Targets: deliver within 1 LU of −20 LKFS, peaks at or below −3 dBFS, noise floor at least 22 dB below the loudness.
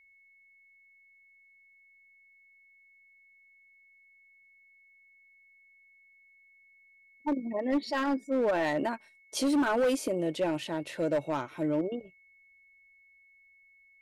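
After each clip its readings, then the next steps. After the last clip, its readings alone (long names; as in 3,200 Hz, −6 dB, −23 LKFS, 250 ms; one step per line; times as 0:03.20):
share of clipped samples 1.3%; peaks flattened at −22.5 dBFS; interfering tone 2,200 Hz; level of the tone −59 dBFS; integrated loudness −30.5 LKFS; sample peak −22.5 dBFS; target loudness −20.0 LKFS
→ clipped peaks rebuilt −22.5 dBFS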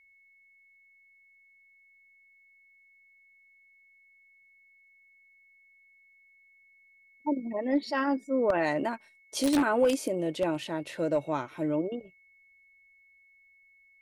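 share of clipped samples 0.0%; interfering tone 2,200 Hz; level of the tone −59 dBFS
→ notch filter 2,200 Hz, Q 30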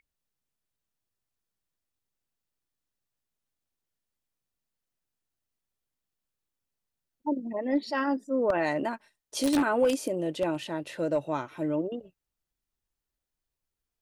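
interfering tone none found; integrated loudness −29.5 LKFS; sample peak −13.5 dBFS; target loudness −20.0 LKFS
→ level +9.5 dB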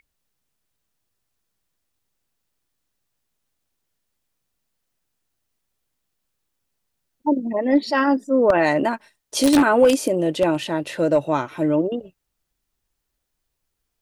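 integrated loudness −20.0 LKFS; sample peak −4.0 dBFS; background noise floor −78 dBFS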